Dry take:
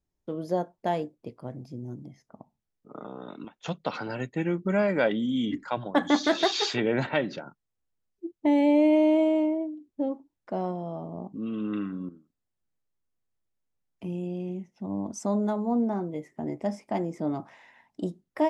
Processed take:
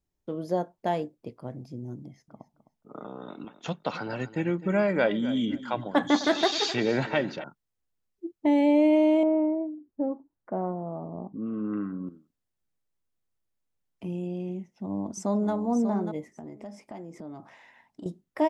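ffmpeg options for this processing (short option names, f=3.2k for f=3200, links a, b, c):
-filter_complex "[0:a]asettb=1/sr,asplit=3[a][b][c];[a]atrim=end=2.024[d];[b]atrim=start=2.02:end=7.44,asetpts=PTS-STARTPTS,afade=t=in:d=0.004:c=qsin,afade=t=out:st=5.416:d=0.004:c=qsin,aecho=1:1:259|518:0.178|0.0409,atrim=end_sample=239022[e];[c]atrim=start=7.436[f];[d][e]acrossfade=d=0.004:c1=hsin:c2=qsin[g];[g][f]acrossfade=d=0.004:c1=qsin:c2=hsin,asettb=1/sr,asplit=3[h][i][j];[h]atrim=end=9.234[k];[i]atrim=start=9.23:end=12.07,asetpts=PTS-STARTPTS,afade=t=in:d=0.004:c=qsin,afade=t=out:st=2.836:d=0.004:c=qsin,lowpass=f=1.7k:w=0.5412,lowpass=f=1.7k:w=1.3066[l];[j]atrim=start=12.066[m];[k][l]acrossfade=d=0.004:c1=hsin:c2=qsin[n];[n][m]acrossfade=d=0.004:c1=qsin:c2=hsin,asplit=2[o][p];[p]afade=t=in:st=14.58:d=0.01,afade=t=out:st=15.52:d=0.01,aecho=0:1:590|1180:0.398107|0.0597161[q];[o][q]amix=inputs=2:normalize=0,asettb=1/sr,asplit=3[r][s][t];[r]atrim=end=16.274[u];[s]atrim=start=16.27:end=18.06,asetpts=PTS-STARTPTS,afade=t=in:d=0.004:c=qsin,afade=t=out:st=1.786:d=0.004:c=qsin,acompressor=threshold=-39dB:ratio=4:attack=3.2:release=140:knee=1:detection=peak[v];[t]atrim=start=18.056[w];[u][v]acrossfade=d=0.004:c1=hsin:c2=qsin[x];[x][w]acrossfade=d=0.004:c1=qsin:c2=hsin"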